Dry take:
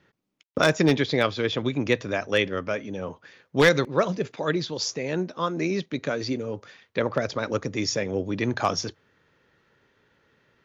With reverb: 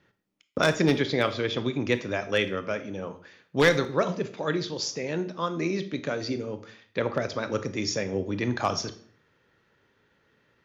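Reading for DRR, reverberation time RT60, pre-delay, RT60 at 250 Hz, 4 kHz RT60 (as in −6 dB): 10.0 dB, 0.55 s, 21 ms, 0.60 s, 0.45 s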